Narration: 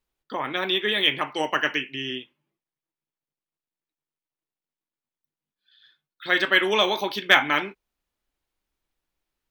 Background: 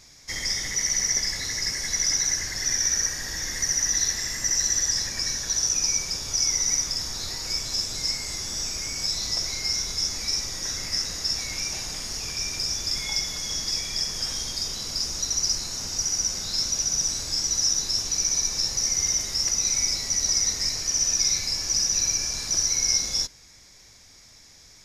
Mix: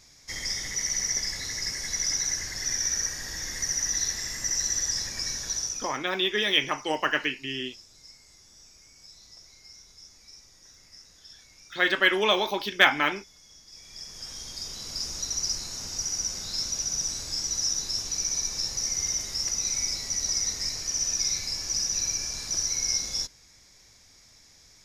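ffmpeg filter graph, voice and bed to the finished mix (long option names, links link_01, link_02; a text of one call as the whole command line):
ffmpeg -i stem1.wav -i stem2.wav -filter_complex "[0:a]adelay=5500,volume=-2dB[link_01];[1:a]volume=15dB,afade=type=out:start_time=5.48:duration=0.5:silence=0.105925,afade=type=in:start_time=13.69:duration=1.39:silence=0.112202[link_02];[link_01][link_02]amix=inputs=2:normalize=0" out.wav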